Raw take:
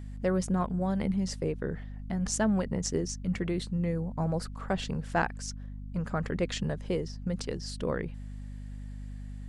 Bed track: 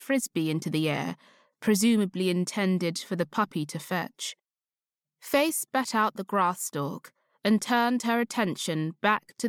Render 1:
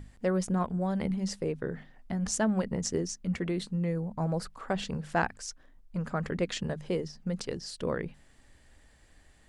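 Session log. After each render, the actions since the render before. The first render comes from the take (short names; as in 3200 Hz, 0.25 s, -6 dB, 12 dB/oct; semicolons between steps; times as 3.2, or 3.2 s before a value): notches 50/100/150/200/250 Hz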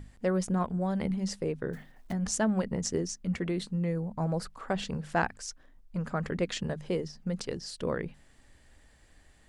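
1.73–2.13 block floating point 5-bit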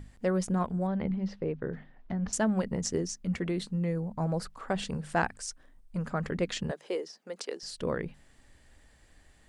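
0.87–2.33 air absorption 290 m; 4.75–6.05 bell 8800 Hz +8.5 dB 0.27 oct; 6.71–7.63 HPF 340 Hz 24 dB/oct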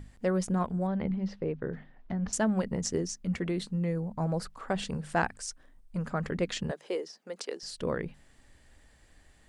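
nothing audible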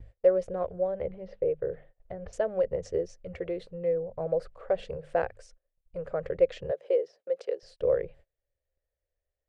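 EQ curve 110 Hz 0 dB, 230 Hz -21 dB, 530 Hz +12 dB, 890 Hz -9 dB, 2400 Hz -6 dB, 8200 Hz -21 dB; gate -50 dBFS, range -27 dB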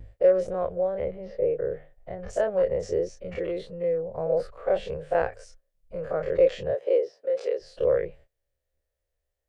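spectral dilation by 60 ms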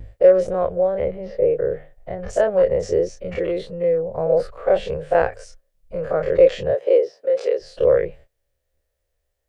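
gain +7 dB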